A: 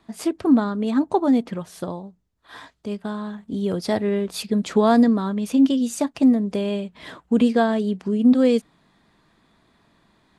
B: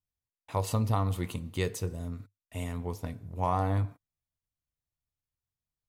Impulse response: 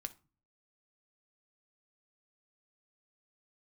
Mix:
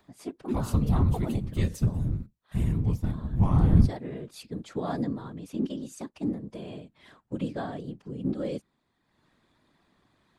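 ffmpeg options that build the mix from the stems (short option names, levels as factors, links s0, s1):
-filter_complex "[0:a]volume=0.355[s0];[1:a]asubboost=boost=10:cutoff=190,volume=1.26[s1];[s0][s1]amix=inputs=2:normalize=0,acompressor=mode=upward:threshold=0.00251:ratio=2.5,afftfilt=real='hypot(re,im)*cos(2*PI*random(0))':imag='hypot(re,im)*sin(2*PI*random(1))':win_size=512:overlap=0.75"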